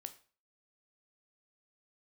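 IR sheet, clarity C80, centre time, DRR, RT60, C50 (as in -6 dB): 19.5 dB, 5 ms, 8.5 dB, 0.40 s, 15.0 dB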